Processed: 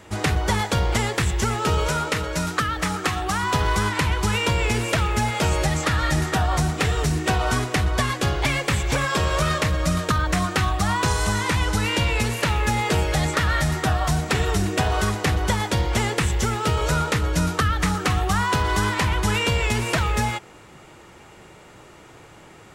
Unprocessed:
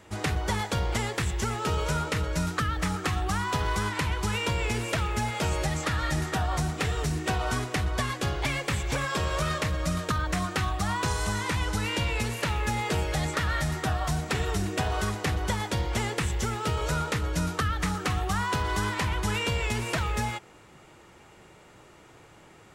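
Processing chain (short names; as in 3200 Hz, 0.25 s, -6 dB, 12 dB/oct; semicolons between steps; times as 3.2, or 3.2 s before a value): 1.88–3.43 low shelf 150 Hz -9.5 dB; gain +6.5 dB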